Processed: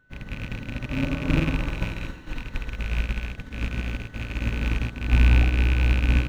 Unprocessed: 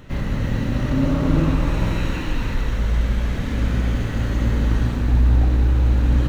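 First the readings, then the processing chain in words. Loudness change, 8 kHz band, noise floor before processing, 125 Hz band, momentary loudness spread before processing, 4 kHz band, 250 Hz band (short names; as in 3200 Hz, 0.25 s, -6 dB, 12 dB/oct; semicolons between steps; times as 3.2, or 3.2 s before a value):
-5.0 dB, n/a, -25 dBFS, -5.5 dB, 7 LU, -1.0 dB, -7.0 dB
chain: rattling part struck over -20 dBFS, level -13 dBFS; whine 1500 Hz -37 dBFS; upward expander 2.5:1, over -29 dBFS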